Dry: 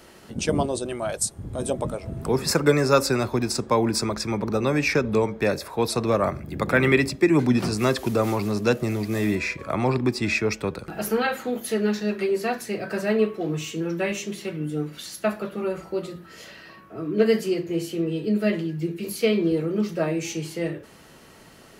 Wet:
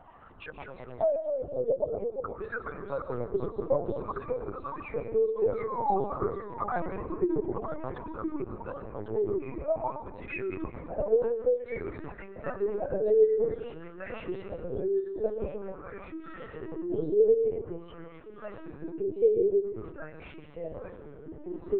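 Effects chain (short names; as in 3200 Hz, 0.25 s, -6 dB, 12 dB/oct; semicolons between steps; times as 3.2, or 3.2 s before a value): formant sharpening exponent 1.5; dynamic EQ 120 Hz, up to +7 dB, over -44 dBFS, Q 2.2; painted sound fall, 5.51–6.52, 340–1400 Hz -24 dBFS; compressor 3:1, threshold -30 dBFS, peak gain reduction 13.5 dB; wah 0.51 Hz 420–1500 Hz, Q 5.1; echoes that change speed 0.133 s, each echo -2 st, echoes 3, each echo -6 dB; reverb RT60 0.75 s, pre-delay 0.11 s, DRR 10.5 dB; LPC vocoder at 8 kHz pitch kept; gain +9 dB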